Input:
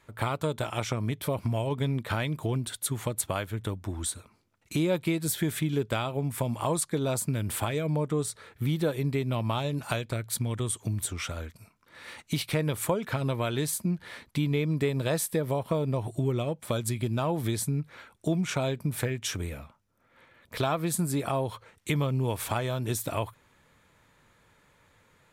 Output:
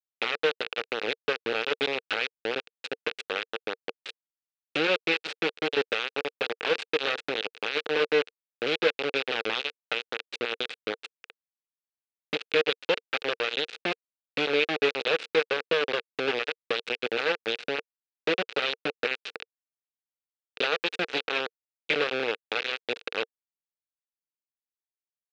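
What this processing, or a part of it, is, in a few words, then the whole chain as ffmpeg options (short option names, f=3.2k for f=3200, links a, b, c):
hand-held game console: -af "acrusher=bits=3:mix=0:aa=0.000001,highpass=420,equalizer=f=460:t=q:w=4:g=10,equalizer=f=670:t=q:w=4:g=-6,equalizer=f=1k:t=q:w=4:g=-9,equalizer=f=1.5k:t=q:w=4:g=4,equalizer=f=2.6k:t=q:w=4:g=9,equalizer=f=3.8k:t=q:w=4:g=4,lowpass=f=4.2k:w=0.5412,lowpass=f=4.2k:w=1.3066"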